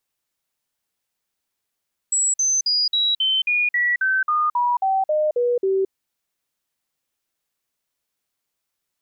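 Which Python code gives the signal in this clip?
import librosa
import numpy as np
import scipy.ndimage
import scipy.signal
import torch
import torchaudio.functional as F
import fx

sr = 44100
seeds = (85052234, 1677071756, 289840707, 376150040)

y = fx.stepped_sweep(sr, from_hz=7760.0, direction='down', per_octave=3, tones=14, dwell_s=0.22, gap_s=0.05, level_db=-16.5)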